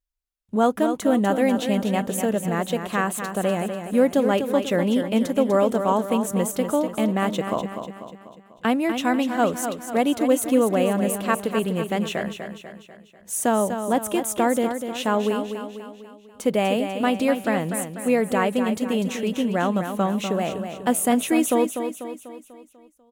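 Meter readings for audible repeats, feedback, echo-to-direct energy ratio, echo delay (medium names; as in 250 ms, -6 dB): 5, 50%, -7.0 dB, 246 ms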